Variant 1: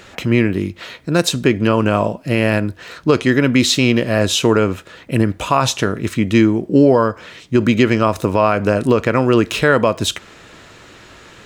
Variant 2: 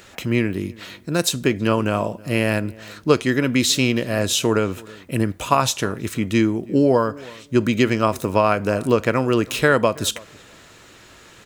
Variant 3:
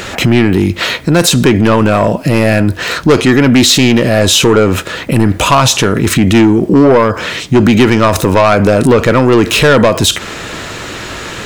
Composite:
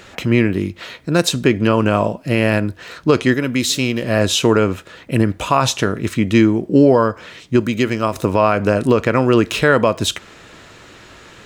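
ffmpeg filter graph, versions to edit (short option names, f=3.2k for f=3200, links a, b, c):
-filter_complex "[1:a]asplit=2[a][b];[0:a]asplit=3[c][d][e];[c]atrim=end=3.342[f];[a]atrim=start=3.338:end=4.032[g];[d]atrim=start=4.028:end=7.602[h];[b]atrim=start=7.598:end=8.162[i];[e]atrim=start=8.158[j];[f][g]acrossfade=d=0.004:c1=hsin:c2=hsin[k];[k][h]acrossfade=d=0.004:c1=hsin:c2=hsin[l];[l][i]acrossfade=d=0.004:c1=hsin:c2=hsin[m];[m][j]acrossfade=d=0.004:c1=hsin:c2=hsin"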